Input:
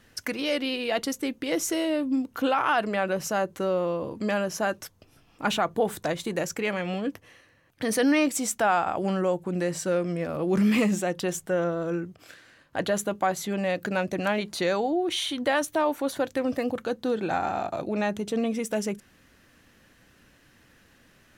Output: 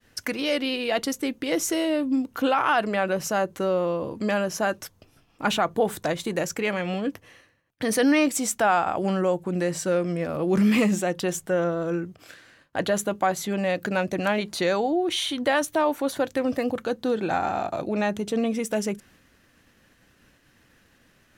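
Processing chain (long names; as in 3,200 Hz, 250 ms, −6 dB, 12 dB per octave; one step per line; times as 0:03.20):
downward expander −54 dBFS
level +2 dB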